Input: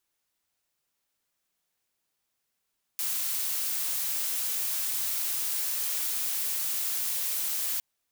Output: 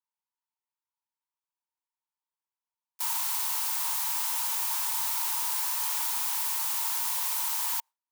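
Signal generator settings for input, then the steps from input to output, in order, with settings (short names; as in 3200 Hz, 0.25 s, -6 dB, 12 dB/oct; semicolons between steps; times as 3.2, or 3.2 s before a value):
noise blue, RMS -30 dBFS 4.81 s
gate with hold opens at -21 dBFS; resonant high-pass 930 Hz, resonance Q 11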